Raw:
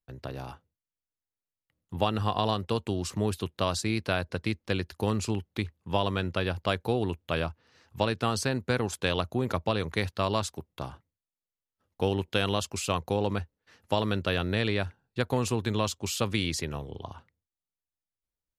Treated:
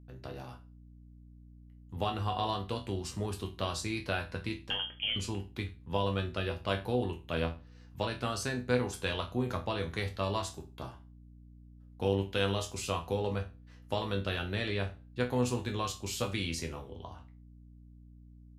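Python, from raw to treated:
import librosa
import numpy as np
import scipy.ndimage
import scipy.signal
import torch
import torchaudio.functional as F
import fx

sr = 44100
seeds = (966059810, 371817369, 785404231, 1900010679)

y = fx.freq_invert(x, sr, carrier_hz=3300, at=(4.7, 5.16))
y = fx.resonator_bank(y, sr, root=40, chord='minor', decay_s=0.3)
y = fx.add_hum(y, sr, base_hz=60, snr_db=18)
y = y * librosa.db_to_amplitude(6.5)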